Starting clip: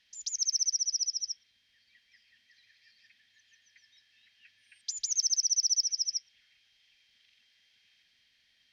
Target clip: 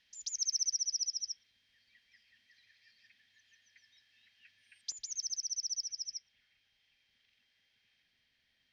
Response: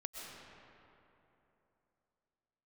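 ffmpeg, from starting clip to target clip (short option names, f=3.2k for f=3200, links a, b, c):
-af "asetnsamples=n=441:p=0,asendcmd='4.92 highshelf g -11',highshelf=f=2k:g=-4.5"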